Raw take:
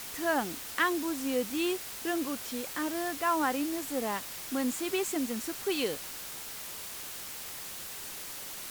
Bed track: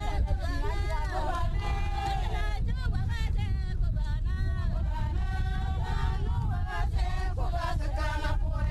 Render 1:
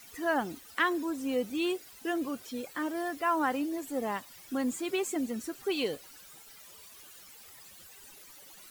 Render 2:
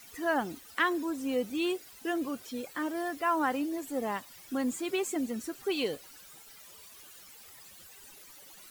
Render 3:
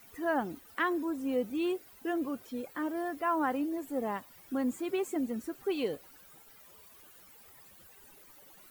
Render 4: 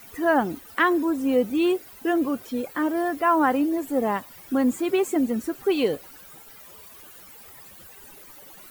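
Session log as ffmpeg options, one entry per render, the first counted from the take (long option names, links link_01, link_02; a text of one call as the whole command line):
ffmpeg -i in.wav -af "afftdn=noise_reduction=15:noise_floor=-42" out.wav
ffmpeg -i in.wav -af anull out.wav
ffmpeg -i in.wav -af "equalizer=frequency=5600:width_type=o:width=2.7:gain=-10" out.wav
ffmpeg -i in.wav -af "volume=10dB" out.wav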